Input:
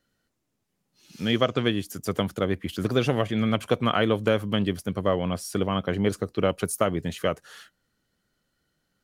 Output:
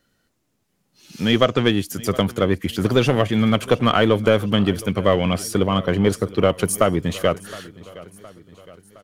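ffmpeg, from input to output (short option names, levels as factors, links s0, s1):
-filter_complex "[0:a]asettb=1/sr,asplit=3[s0][s1][s2];[s0]atrim=end=4.794[s3];[s1]atrim=start=4.79:end=5.45,asetpts=PTS-STARTPTS,afade=t=in:d=0.004:c=qsin,afade=t=out:st=0.656:d=0.004:c=qsin,equalizer=f=2400:t=o:w=0.64:g=8.5[s4];[s2]atrim=start=5.446[s5];[s3][s4]acrossfade=d=0.004:c1=hsin:c2=qsin[s6];[s6][s5]acrossfade=d=0.004:c1=qsin:c2=hsin,asplit=2[s7][s8];[s8]aeval=exprs='clip(val(0),-1,0.0596)':c=same,volume=0.562[s9];[s7][s9]amix=inputs=2:normalize=0,aecho=1:1:715|1430|2145|2860:0.1|0.053|0.0281|0.0149,volume=1.5"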